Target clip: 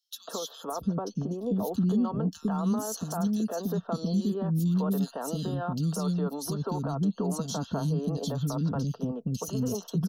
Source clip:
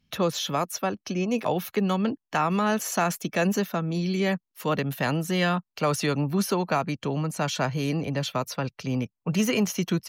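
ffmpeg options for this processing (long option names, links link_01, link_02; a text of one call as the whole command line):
ffmpeg -i in.wav -filter_complex "[0:a]asettb=1/sr,asplit=3[link_01][link_02][link_03];[link_01]atrim=end=0.714[link_04];[link_02]atrim=start=0.71:end=1.63,asetpts=PTS-STARTPTS,afade=type=in:duration=0.004:curve=qsin,afade=type=out:start_time=0.916:duration=0.004:curve=qsin,tiltshelf=frequency=660:gain=6.5[link_05];[link_03]atrim=start=1.626[link_06];[link_04][link_05]acrossfade=duration=0.004:curve1=hsin:curve2=qsin[link_07];[link_07][link_06]acrossfade=duration=0.004:curve1=qsin:curve2=hsin,acompressor=threshold=-26dB:ratio=6,acrossover=split=320|2600[link_08][link_09][link_10];[link_09]adelay=150[link_11];[link_08]adelay=680[link_12];[link_12][link_11][link_10]amix=inputs=3:normalize=0,alimiter=level_in=1.5dB:limit=-24dB:level=0:latency=1:release=16,volume=-1.5dB,asuperstop=centerf=2200:order=4:qfactor=0.99,lowshelf=frequency=320:gain=7.5,aecho=1:1:4.4:0.36" out.wav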